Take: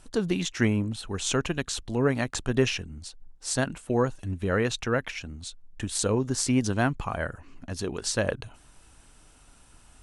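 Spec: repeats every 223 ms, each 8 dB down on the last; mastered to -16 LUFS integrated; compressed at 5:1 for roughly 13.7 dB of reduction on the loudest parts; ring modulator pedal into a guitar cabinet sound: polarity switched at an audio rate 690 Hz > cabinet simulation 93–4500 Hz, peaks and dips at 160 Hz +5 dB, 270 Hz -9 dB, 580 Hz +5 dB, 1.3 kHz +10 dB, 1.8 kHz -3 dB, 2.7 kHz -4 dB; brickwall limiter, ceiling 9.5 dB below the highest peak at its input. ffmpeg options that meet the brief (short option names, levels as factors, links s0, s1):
-af "acompressor=threshold=0.02:ratio=5,alimiter=level_in=1.5:limit=0.0631:level=0:latency=1,volume=0.668,aecho=1:1:223|446|669|892|1115:0.398|0.159|0.0637|0.0255|0.0102,aeval=exprs='val(0)*sgn(sin(2*PI*690*n/s))':c=same,highpass=93,equalizer=f=160:t=q:w=4:g=5,equalizer=f=270:t=q:w=4:g=-9,equalizer=f=580:t=q:w=4:g=5,equalizer=f=1300:t=q:w=4:g=10,equalizer=f=1800:t=q:w=4:g=-3,equalizer=f=2700:t=q:w=4:g=-4,lowpass=f=4500:w=0.5412,lowpass=f=4500:w=1.3066,volume=11.9"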